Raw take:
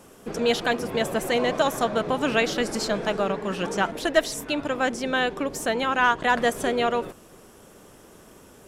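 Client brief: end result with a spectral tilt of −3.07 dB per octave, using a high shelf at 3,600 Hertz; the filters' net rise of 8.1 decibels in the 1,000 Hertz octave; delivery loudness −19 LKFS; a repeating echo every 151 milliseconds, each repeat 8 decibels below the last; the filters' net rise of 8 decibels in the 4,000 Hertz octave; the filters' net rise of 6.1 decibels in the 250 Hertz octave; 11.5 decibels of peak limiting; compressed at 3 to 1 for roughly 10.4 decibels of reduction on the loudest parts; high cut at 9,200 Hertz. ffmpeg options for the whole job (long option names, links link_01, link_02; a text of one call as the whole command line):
ffmpeg -i in.wav -af "lowpass=9200,equalizer=frequency=250:width_type=o:gain=6.5,equalizer=frequency=1000:width_type=o:gain=9,highshelf=frequency=3600:gain=8,equalizer=frequency=4000:width_type=o:gain=5,acompressor=threshold=-22dB:ratio=3,alimiter=limit=-21dB:level=0:latency=1,aecho=1:1:151|302|453|604|755:0.398|0.159|0.0637|0.0255|0.0102,volume=10.5dB" out.wav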